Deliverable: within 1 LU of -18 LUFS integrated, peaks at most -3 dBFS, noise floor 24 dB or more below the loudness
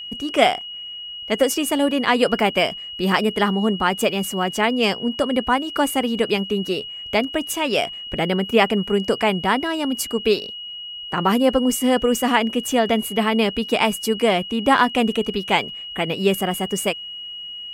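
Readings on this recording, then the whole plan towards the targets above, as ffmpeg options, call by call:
steady tone 2900 Hz; tone level -31 dBFS; loudness -20.5 LUFS; peak -2.5 dBFS; loudness target -18.0 LUFS
-> -af "bandreject=f=2.9k:w=30"
-af "volume=2.5dB,alimiter=limit=-3dB:level=0:latency=1"

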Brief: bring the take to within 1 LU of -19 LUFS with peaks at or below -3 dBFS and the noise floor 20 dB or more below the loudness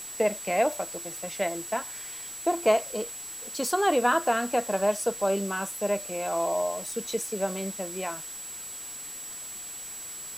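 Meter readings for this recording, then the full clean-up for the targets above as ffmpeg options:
steady tone 7800 Hz; tone level -38 dBFS; noise floor -40 dBFS; noise floor target -49 dBFS; loudness -29.0 LUFS; peak -9.5 dBFS; loudness target -19.0 LUFS
-> -af "bandreject=f=7.8k:w=30"
-af "afftdn=nr=9:nf=-40"
-af "volume=10dB,alimiter=limit=-3dB:level=0:latency=1"

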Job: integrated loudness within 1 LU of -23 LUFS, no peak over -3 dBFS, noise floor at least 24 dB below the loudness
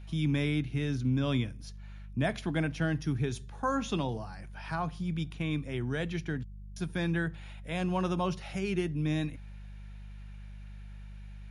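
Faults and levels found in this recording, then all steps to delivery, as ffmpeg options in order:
hum 50 Hz; harmonics up to 200 Hz; hum level -43 dBFS; loudness -32.5 LUFS; peak -16.5 dBFS; loudness target -23.0 LUFS
-> -af "bandreject=f=50:t=h:w=4,bandreject=f=100:t=h:w=4,bandreject=f=150:t=h:w=4,bandreject=f=200:t=h:w=4"
-af "volume=9.5dB"

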